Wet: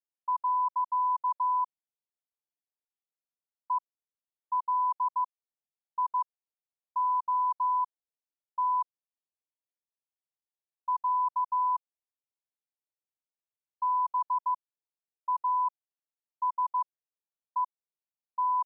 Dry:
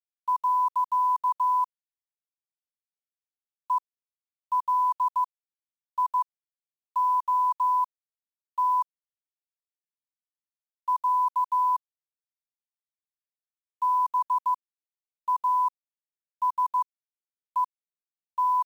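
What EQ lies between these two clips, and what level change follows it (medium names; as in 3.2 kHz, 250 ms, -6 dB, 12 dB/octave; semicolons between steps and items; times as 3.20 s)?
high-pass 430 Hz 6 dB/octave; steep low-pass 1 kHz 36 dB/octave; 0.0 dB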